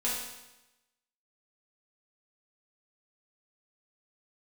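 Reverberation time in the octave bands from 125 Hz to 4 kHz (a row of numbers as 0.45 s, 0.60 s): 1.0 s, 1.0 s, 1.0 s, 1.0 s, 0.95 s, 0.95 s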